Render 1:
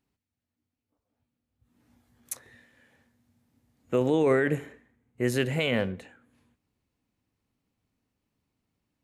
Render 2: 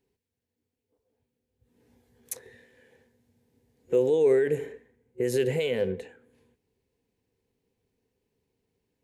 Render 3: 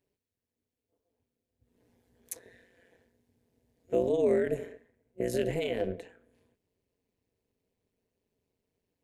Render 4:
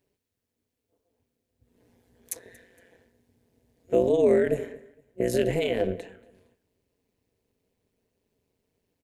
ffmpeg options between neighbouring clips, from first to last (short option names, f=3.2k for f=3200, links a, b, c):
-filter_complex "[0:a]acrossover=split=4000[a][b];[a]alimiter=limit=-23dB:level=0:latency=1:release=86[c];[c][b]amix=inputs=2:normalize=0,superequalizer=7b=3.98:10b=0.447"
-af "tremolo=f=180:d=0.788,volume=-1dB"
-af "aecho=1:1:232|464:0.0631|0.0227,volume=5.5dB"